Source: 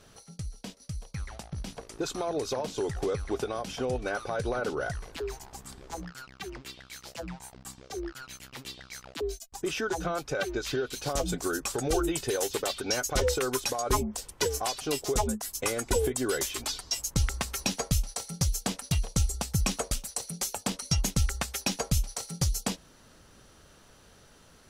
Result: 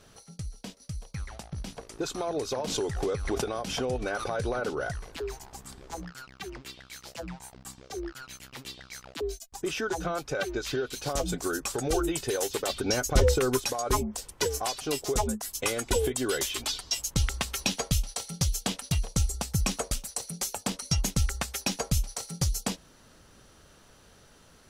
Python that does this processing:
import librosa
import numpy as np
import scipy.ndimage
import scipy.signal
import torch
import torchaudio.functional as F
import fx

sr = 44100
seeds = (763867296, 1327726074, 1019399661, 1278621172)

y = fx.pre_swell(x, sr, db_per_s=46.0, at=(2.67, 4.6))
y = fx.low_shelf(y, sr, hz=370.0, db=9.0, at=(12.68, 13.6))
y = fx.peak_eq(y, sr, hz=3200.0, db=5.5, octaves=0.77, at=(15.51, 18.9))